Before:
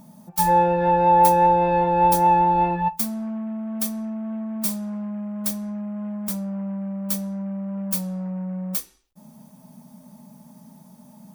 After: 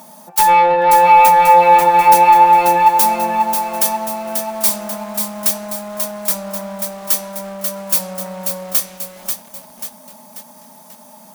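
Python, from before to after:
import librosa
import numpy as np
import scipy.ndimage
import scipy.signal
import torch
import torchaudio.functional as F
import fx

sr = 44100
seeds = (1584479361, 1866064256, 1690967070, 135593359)

p1 = scipy.signal.sosfilt(scipy.signal.butter(2, 550.0, 'highpass', fs=sr, output='sos'), x)
p2 = fx.rider(p1, sr, range_db=10, speed_s=0.5)
p3 = p1 + (p2 * librosa.db_to_amplitude(0.0))
p4 = fx.fold_sine(p3, sr, drive_db=8, ceiling_db=-1.5)
p5 = fx.echo_crushed(p4, sr, ms=538, feedback_pct=55, bits=5, wet_db=-5.5)
y = p5 * librosa.db_to_amplitude(-5.5)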